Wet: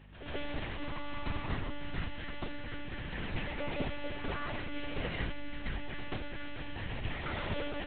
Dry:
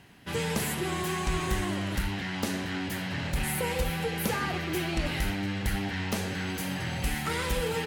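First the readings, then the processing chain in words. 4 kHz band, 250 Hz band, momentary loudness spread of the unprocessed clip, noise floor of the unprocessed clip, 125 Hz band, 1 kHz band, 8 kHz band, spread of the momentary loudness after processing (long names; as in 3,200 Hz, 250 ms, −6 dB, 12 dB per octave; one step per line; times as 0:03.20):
−9.5 dB, −9.5 dB, 3 LU, −35 dBFS, −9.0 dB, −8.5 dB, below −40 dB, 5 LU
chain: one-pitch LPC vocoder at 8 kHz 290 Hz
mains hum 50 Hz, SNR 17 dB
backwards echo 133 ms −10 dB
level −6.5 dB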